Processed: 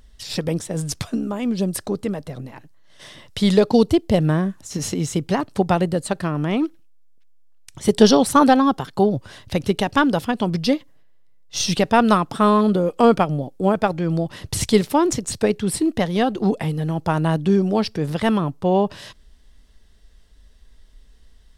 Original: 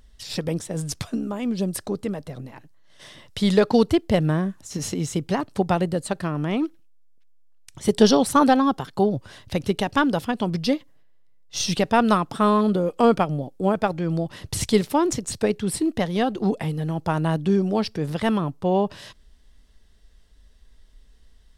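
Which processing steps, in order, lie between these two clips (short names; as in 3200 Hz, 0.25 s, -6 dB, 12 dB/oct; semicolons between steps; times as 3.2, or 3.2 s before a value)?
3.55–4.19 dynamic EQ 1600 Hz, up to -8 dB, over -39 dBFS, Q 1.1; gain +3 dB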